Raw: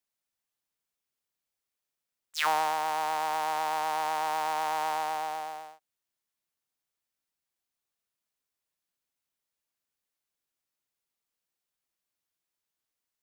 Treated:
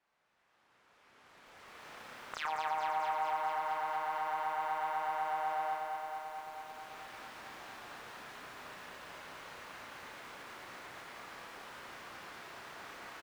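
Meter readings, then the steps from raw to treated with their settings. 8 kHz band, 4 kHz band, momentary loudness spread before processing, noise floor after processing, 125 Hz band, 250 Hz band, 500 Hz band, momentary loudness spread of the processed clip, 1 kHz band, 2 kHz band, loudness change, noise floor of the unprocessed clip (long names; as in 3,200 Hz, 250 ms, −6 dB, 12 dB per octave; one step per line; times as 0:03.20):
−11.0 dB, −8.0 dB, 9 LU, −71 dBFS, can't be measured, −4.5 dB, −4.5 dB, 14 LU, −4.0 dB, −3.5 dB, −9.5 dB, below −85 dBFS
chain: camcorder AGC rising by 16 dB per second
hard clipping −22 dBFS, distortion −18 dB
resonant band-pass 1,400 Hz, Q 0.9
downward compressor 6 to 1, threshold −52 dBFS, peak gain reduction 22.5 dB
spectral tilt −3.5 dB per octave
on a send: loudspeakers that aren't time-aligned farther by 11 metres −3 dB, 40 metres −7 dB
on the sum: brickwall limiter −43 dBFS, peak gain reduction 6.5 dB
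feedback echo at a low word length 220 ms, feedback 80%, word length 13 bits, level −4 dB
level +16.5 dB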